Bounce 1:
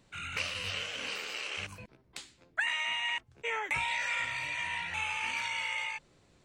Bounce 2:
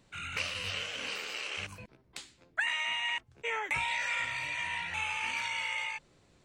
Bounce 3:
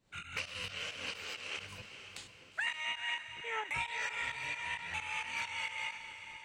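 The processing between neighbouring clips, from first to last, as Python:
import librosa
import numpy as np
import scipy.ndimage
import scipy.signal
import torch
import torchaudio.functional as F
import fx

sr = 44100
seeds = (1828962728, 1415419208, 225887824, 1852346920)

y1 = x
y2 = fx.tremolo_shape(y1, sr, shape='saw_up', hz=4.4, depth_pct=85)
y2 = fx.echo_diffused(y2, sr, ms=481, feedback_pct=43, wet_db=-10.0)
y2 = fx.end_taper(y2, sr, db_per_s=200.0)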